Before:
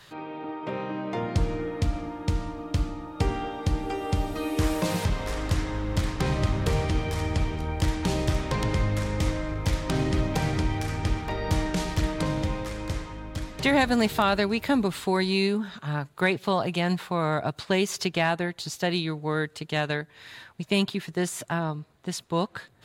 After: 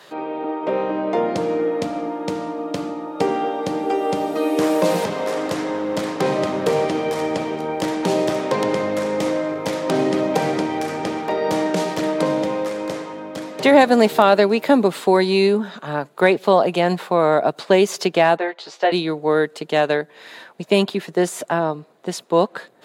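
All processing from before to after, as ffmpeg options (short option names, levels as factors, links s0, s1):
-filter_complex "[0:a]asettb=1/sr,asplit=3[s0][s1][s2];[s0]atrim=end=18.374[s3];[s1]atrim=start=18.37:end=18.92,asetpts=PTS-STARTPTS,afade=t=in:d=0.004:c=qsin,afade=t=out:st=0.546:d=0.004:c=qsin,highpass=530,lowpass=3300,asplit=2[s4][s5];[s5]adelay=14,volume=0.668[s6];[s4][s6]amix=inputs=2:normalize=0,atrim=end_sample=24255[s7];[s2]atrim=start=18.916[s8];[s3][s7]acrossfade=d=0.004:c1=hsin:c2=qsin[s9];[s9][s8]acrossfade=d=0.004:c1=qsin:c2=hsin,highpass=f=180:w=0.5412,highpass=f=180:w=1.3066,equalizer=f=540:w=0.83:g=10,volume=1.5"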